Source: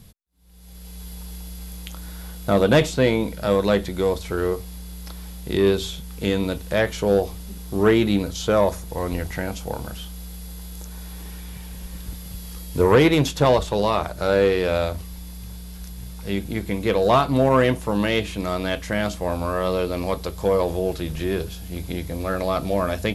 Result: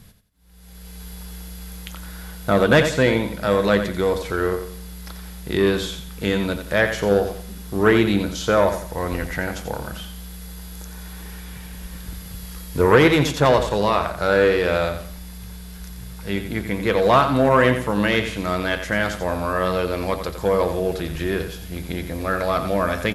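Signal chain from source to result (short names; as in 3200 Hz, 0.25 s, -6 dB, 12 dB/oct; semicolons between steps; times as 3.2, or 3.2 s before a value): bell 1600 Hz +6.5 dB 0.94 oct; feedback echo 88 ms, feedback 32%, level -9 dB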